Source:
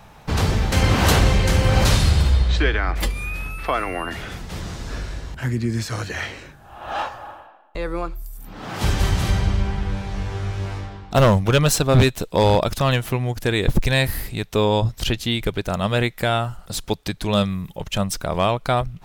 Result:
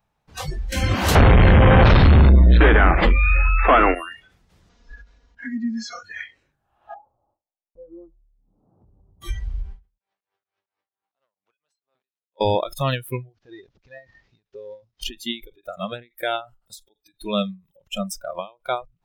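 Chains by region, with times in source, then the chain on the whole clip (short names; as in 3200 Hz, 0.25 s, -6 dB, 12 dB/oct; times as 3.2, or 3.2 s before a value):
1.15–3.95 notches 50/100/150/200/250/300/350 Hz + sample leveller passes 5 + LPF 2100 Hz
4.69–6.03 steep low-pass 6800 Hz + bell 120 Hz -7.5 dB 0.98 oct + comb 4.2 ms, depth 92%
6.94–9.22 gate -41 dBFS, range -18 dB + Gaussian blur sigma 12 samples + compressor 12:1, threshold -25 dBFS
9.98–12.41 BPF 590–5000 Hz + compressor 2.5:1, threshold -30 dBFS + dB-ramp tremolo swelling 4.4 Hz, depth 36 dB
13.29–15.02 CVSD 32 kbps + HPF 84 Hz 6 dB/oct + compressor, threshold -25 dBFS
whole clip: spectral noise reduction 25 dB; ending taper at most 220 dB/s; gain -2.5 dB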